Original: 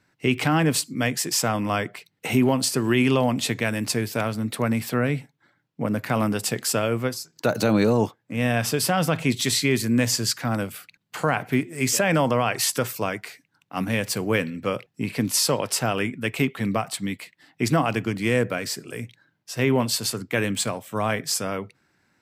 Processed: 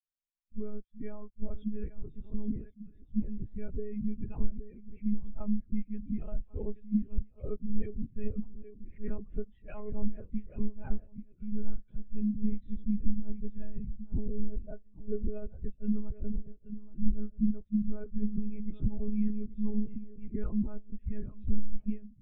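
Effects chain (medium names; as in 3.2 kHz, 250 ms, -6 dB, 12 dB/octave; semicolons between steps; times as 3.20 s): reverse the whole clip; peaking EQ 160 Hz +14.5 dB 0.79 oct; compression 16:1, threshold -27 dBFS, peak gain reduction 22.5 dB; spectral replace 18.26–18.83 s, 590–1900 Hz after; on a send: shuffle delay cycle 1104 ms, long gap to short 3:1, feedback 30%, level -5 dB; on the sum: monotone LPC vocoder at 8 kHz 210 Hz; spectral contrast expander 2.5:1; trim +5 dB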